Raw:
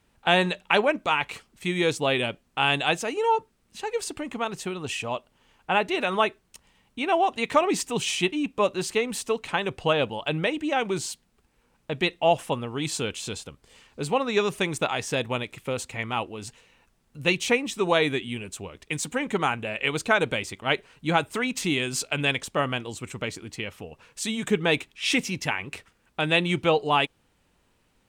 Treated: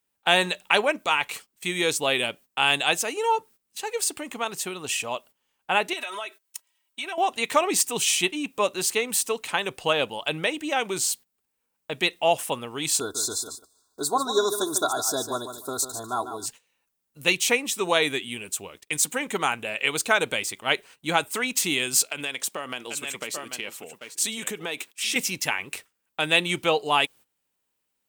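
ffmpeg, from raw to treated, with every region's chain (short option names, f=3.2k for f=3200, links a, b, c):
-filter_complex "[0:a]asettb=1/sr,asplit=3[a][b][c];[a]atrim=end=5.934[d];[b]atrim=start=5.93:end=7.18,asetpts=PTS-STARTPTS,afade=t=in:d=0.004:c=qsin,afade=t=out:st=1.246:d=0.004:c=qsin,highpass=f=940:p=1,aecho=1:1:3.1:1,atrim=end_sample=55125,acompressor=threshold=-30dB:ratio=8:attack=3.2:release=140:knee=1:detection=peak[e];[c]atrim=start=7.176[f];[d][e]acrossfade=d=0.004:c1=hsin:c2=qsin[g];[g][f]acrossfade=d=0.004:c1=qsin:c2=hsin,asettb=1/sr,asplit=3[h][i][j];[h]atrim=end=13.004[k];[i]atrim=start=13:end=16.46,asetpts=PTS-STARTPTS,afade=t=in:d=0.004:c=qsin,afade=t=out:st=3.456:d=0.004:c=qsin,asuperstop=centerf=2400:order=20:qfactor=1.2,aecho=1:1:2.9:0.78,atrim=end_sample=152586,aecho=1:1:147|294|441:0.335|0.0603|0.0109,atrim=end_sample=152586[l];[j]atrim=start=16.456[m];[k][l]acrossfade=d=0.004:c1=hsin:c2=qsin[n];[n][m]acrossfade=d=0.004:c1=qsin:c2=hsin,asettb=1/sr,asplit=3[o][p][q];[o]atrim=end=22.074[r];[p]atrim=start=22.07:end=25.16,asetpts=PTS-STARTPTS,afade=t=in:d=0.004:c=qsin,afade=t=out:st=3.086:d=0.004:c=qsin,highpass=180,aecho=1:1:789:0.266,atrim=end_sample=136269,acompressor=threshold=-27dB:ratio=5:attack=3.2:release=140:knee=1:detection=peak[s];[q]atrim=start=25.156[t];[r][s]acrossfade=d=0.004:c1=hsin:c2=qsin[u];[u][t]acrossfade=d=0.004:c1=qsin:c2=hsin,agate=range=-16dB:threshold=-46dB:ratio=16:detection=peak,aemphasis=mode=production:type=bsi"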